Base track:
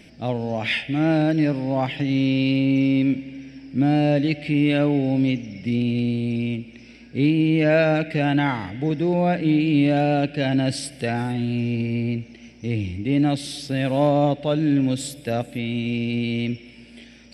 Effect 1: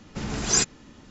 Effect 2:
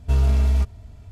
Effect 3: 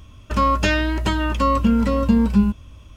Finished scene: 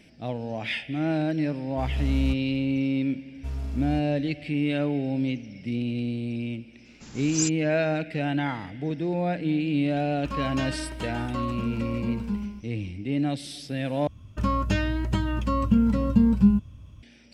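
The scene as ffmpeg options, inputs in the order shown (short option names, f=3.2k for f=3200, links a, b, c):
-filter_complex "[2:a]asplit=2[a][b];[3:a]asplit=2[c][d];[0:a]volume=-6.5dB[e];[a]dynaudnorm=f=100:g=5:m=11.5dB[f];[1:a]aemphasis=mode=production:type=75kf[g];[c]aecho=1:1:145:0.447[h];[d]equalizer=f=130:w=0.72:g=13.5[i];[e]asplit=2[j][k];[j]atrim=end=14.074[l];[i]atrim=end=2.96,asetpts=PTS-STARTPTS,volume=-10.5dB[m];[k]atrim=start=17.026[n];[f]atrim=end=1.11,asetpts=PTS-STARTPTS,volume=-16dB,afade=t=in:d=0.004:c=hsin,afade=t=out:st=1.106:d=0.004:c=hsin,adelay=1690[o];[b]atrim=end=1.11,asetpts=PTS-STARTPTS,volume=-14dB,afade=t=in:d=0.004:c=hsin,afade=t=out:st=1.106:d=0.004:c=hsin,adelay=3350[p];[g]atrim=end=1.1,asetpts=PTS-STARTPTS,volume=-16dB,afade=t=in:d=0.004:c=hsin,afade=t=out:st=1.096:d=0.004:c=hsin,adelay=6850[q];[h]atrim=end=2.96,asetpts=PTS-STARTPTS,volume=-14dB,afade=t=in:d=0.004:c=hsin,afade=t=out:st=2.956:d=0.004:c=hsin,adelay=438354S[r];[l][m]acrossfade=d=0.004:c1=hsin:c2=hsin[s];[s][n]acrossfade=d=0.004:c1=hsin:c2=hsin[t];[t][o][p][q][r]amix=inputs=5:normalize=0"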